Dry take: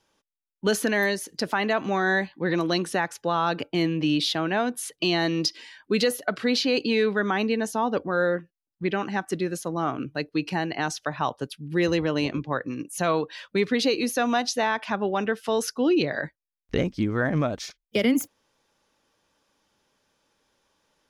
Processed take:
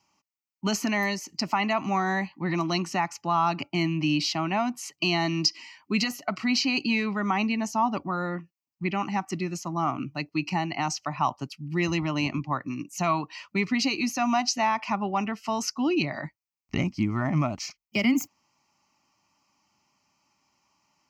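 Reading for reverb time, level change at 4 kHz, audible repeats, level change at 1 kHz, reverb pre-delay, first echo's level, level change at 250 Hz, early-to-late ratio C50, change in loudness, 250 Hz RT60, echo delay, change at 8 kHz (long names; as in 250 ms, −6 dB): no reverb audible, −1.0 dB, no echo audible, +1.5 dB, no reverb audible, no echo audible, −1.0 dB, no reverb audible, −1.5 dB, no reverb audible, no echo audible, 0.0 dB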